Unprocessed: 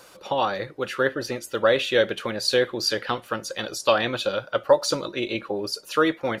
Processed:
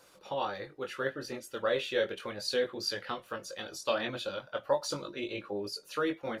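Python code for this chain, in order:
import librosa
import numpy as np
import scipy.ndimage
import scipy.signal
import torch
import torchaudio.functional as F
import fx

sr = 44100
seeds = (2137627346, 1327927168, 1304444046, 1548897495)

y = fx.chorus_voices(x, sr, voices=2, hz=0.37, base_ms=21, depth_ms=1.3, mix_pct=40)
y = y * librosa.db_to_amplitude(-7.5)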